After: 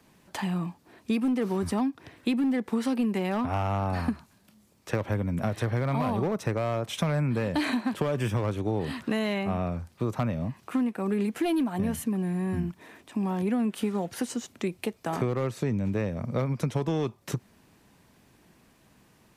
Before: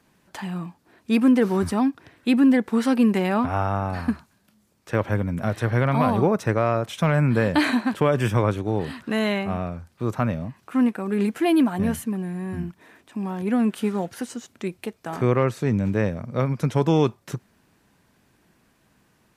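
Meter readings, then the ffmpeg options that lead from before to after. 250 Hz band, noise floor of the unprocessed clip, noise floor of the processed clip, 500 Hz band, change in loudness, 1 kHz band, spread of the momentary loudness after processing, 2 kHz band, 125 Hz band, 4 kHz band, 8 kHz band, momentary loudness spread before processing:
−6.0 dB, −64 dBFS, −61 dBFS, −6.0 dB, −6.0 dB, −6.0 dB, 6 LU, −7.0 dB, −5.0 dB, −4.0 dB, −1.5 dB, 13 LU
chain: -filter_complex "[0:a]acrossover=split=230|2700[link_01][link_02][link_03];[link_02]volume=17.5dB,asoftclip=hard,volume=-17.5dB[link_04];[link_01][link_04][link_03]amix=inputs=3:normalize=0,equalizer=frequency=1500:width_type=o:width=0.45:gain=-4,acompressor=threshold=-27dB:ratio=6,volume=2.5dB"

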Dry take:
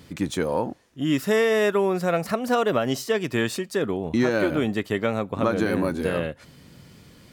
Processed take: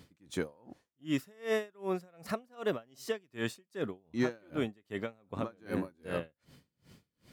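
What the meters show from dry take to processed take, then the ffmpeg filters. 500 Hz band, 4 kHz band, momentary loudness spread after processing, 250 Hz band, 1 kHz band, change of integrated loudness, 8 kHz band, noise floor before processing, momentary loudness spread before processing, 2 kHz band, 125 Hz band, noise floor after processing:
−13.5 dB, −13.0 dB, 7 LU, −12.5 dB, −15.5 dB, −13.0 dB, −14.0 dB, −51 dBFS, 7 LU, −13.5 dB, −13.0 dB, −84 dBFS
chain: -af "aeval=exprs='val(0)*pow(10,-33*(0.5-0.5*cos(2*PI*2.6*n/s))/20)':channel_layout=same,volume=-7dB"

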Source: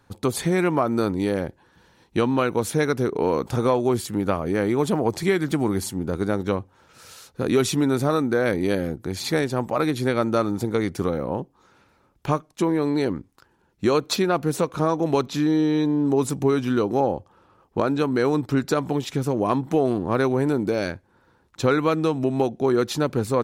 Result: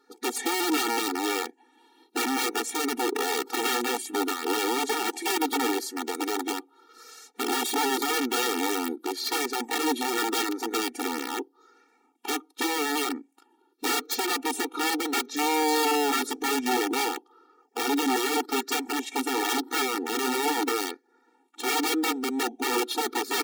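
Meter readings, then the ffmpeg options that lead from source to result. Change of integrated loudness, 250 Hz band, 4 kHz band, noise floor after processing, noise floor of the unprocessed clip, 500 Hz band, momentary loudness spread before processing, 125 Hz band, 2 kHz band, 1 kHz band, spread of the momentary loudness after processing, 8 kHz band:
−4.0 dB, −7.5 dB, +5.5 dB, −66 dBFS, −62 dBFS, −8.5 dB, 6 LU, below −35 dB, +2.0 dB, +0.5 dB, 7 LU, +5.5 dB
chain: -af "afftfilt=real='re*pow(10,7/40*sin(2*PI*(0.58*log(max(b,1)*sr/1024/100)/log(2)-(0.86)*(pts-256)/sr)))':imag='im*pow(10,7/40*sin(2*PI*(0.58*log(max(b,1)*sr/1024/100)/log(2)-(0.86)*(pts-256)/sr)))':win_size=1024:overlap=0.75,aeval=exprs='(mod(7.5*val(0)+1,2)-1)/7.5':channel_layout=same,afftfilt=real='re*eq(mod(floor(b*sr/1024/240),2),1)':imag='im*eq(mod(floor(b*sr/1024/240),2),1)':win_size=1024:overlap=0.75"

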